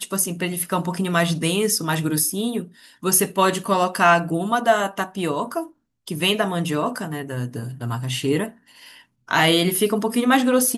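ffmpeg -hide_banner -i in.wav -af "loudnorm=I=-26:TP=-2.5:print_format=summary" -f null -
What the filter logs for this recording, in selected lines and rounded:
Input Integrated:    -20.8 LUFS
Input True Peak:      -2.9 dBTP
Input LRA:             5.0 LU
Input Threshold:     -31.3 LUFS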